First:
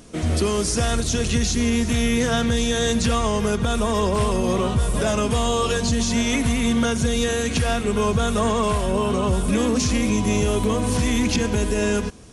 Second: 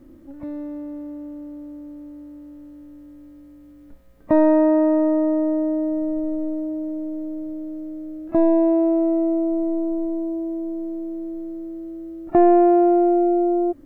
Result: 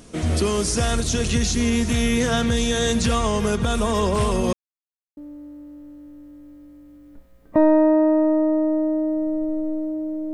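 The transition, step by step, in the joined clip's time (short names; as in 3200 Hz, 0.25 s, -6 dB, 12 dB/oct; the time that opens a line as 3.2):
first
4.53–5.17 mute
5.17 switch to second from 1.92 s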